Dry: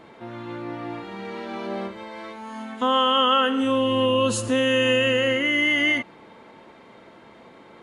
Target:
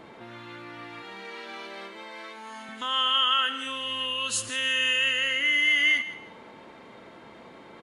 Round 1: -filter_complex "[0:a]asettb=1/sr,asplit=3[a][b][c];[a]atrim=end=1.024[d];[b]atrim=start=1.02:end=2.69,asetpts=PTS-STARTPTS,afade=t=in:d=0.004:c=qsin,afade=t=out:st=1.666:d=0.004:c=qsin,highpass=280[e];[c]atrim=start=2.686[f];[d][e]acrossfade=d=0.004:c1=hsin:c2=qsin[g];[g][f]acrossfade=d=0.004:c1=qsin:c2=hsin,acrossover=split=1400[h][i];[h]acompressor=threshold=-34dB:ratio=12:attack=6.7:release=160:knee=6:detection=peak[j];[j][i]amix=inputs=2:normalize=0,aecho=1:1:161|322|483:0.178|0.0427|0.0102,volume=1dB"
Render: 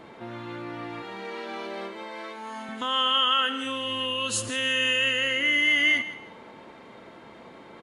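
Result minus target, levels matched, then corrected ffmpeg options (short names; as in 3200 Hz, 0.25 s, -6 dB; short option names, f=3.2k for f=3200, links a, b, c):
compressor: peak gain reduction -8.5 dB
-filter_complex "[0:a]asettb=1/sr,asplit=3[a][b][c];[a]atrim=end=1.024[d];[b]atrim=start=1.02:end=2.69,asetpts=PTS-STARTPTS,afade=t=in:d=0.004:c=qsin,afade=t=out:st=1.666:d=0.004:c=qsin,highpass=280[e];[c]atrim=start=2.686[f];[d][e]acrossfade=d=0.004:c1=hsin:c2=qsin[g];[g][f]acrossfade=d=0.004:c1=qsin:c2=hsin,acrossover=split=1400[h][i];[h]acompressor=threshold=-43dB:ratio=12:attack=6.7:release=160:knee=6:detection=peak[j];[j][i]amix=inputs=2:normalize=0,aecho=1:1:161|322|483:0.178|0.0427|0.0102,volume=1dB"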